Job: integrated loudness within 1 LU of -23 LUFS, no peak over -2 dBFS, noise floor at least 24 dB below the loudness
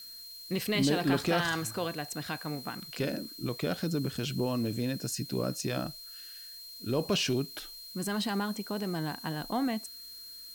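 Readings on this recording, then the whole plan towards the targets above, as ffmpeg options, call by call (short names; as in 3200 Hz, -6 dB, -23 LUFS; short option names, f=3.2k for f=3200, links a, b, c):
steady tone 4200 Hz; tone level -45 dBFS; noise floor -47 dBFS; noise floor target -57 dBFS; loudness -32.5 LUFS; peak -15.0 dBFS; loudness target -23.0 LUFS
-> -af "bandreject=f=4.2k:w=30"
-af "afftdn=nr=10:nf=-47"
-af "volume=9.5dB"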